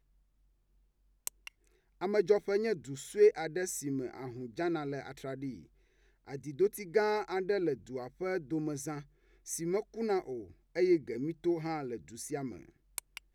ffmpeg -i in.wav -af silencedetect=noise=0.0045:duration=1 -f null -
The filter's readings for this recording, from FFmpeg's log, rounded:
silence_start: 0.00
silence_end: 1.27 | silence_duration: 1.27